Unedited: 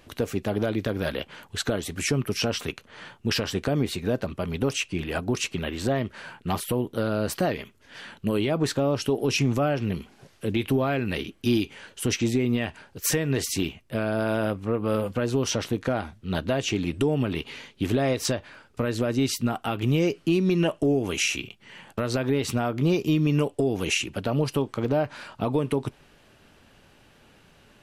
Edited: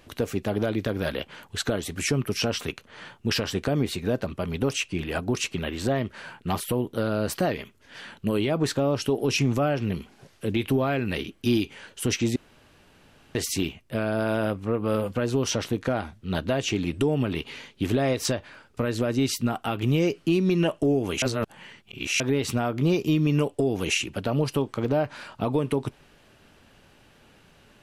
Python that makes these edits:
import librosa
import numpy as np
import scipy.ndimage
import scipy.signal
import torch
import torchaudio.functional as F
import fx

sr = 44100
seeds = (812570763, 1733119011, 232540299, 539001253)

y = fx.edit(x, sr, fx.room_tone_fill(start_s=12.36, length_s=0.99),
    fx.reverse_span(start_s=21.22, length_s=0.98), tone=tone)